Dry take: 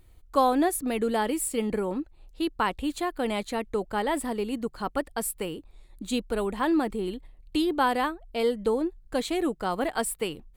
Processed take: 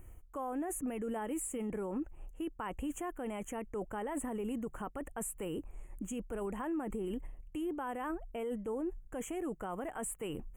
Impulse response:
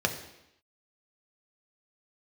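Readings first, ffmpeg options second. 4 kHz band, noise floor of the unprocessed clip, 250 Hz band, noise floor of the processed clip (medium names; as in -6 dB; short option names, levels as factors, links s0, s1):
-19.5 dB, -55 dBFS, -9.5 dB, -55 dBFS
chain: -filter_complex "[0:a]acrossover=split=9300[s0][s1];[s1]acompressor=threshold=0.00501:ratio=4:attack=1:release=60[s2];[s0][s2]amix=inputs=2:normalize=0,equalizer=f=2700:t=o:w=1.1:g=-5,areverse,acompressor=threshold=0.0251:ratio=12,areverse,alimiter=level_in=3.35:limit=0.0631:level=0:latency=1:release=31,volume=0.299,asuperstop=centerf=4400:order=12:qfactor=1.4,volume=1.58"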